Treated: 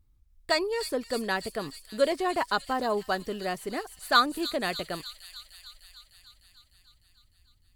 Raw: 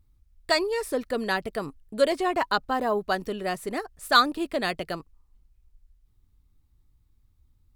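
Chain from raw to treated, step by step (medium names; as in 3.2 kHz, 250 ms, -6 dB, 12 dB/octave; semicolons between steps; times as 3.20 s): feedback echo behind a high-pass 302 ms, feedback 69%, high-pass 4.8 kHz, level -3 dB; trim -2.5 dB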